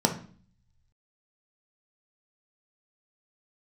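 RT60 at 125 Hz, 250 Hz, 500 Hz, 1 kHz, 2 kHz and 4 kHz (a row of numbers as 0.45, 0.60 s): 1.3, 0.75, 0.45, 0.45, 0.40, 0.45 s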